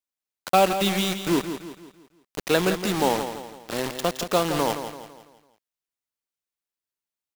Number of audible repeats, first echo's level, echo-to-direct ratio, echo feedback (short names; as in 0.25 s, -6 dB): 4, -9.5 dB, -8.5 dB, 43%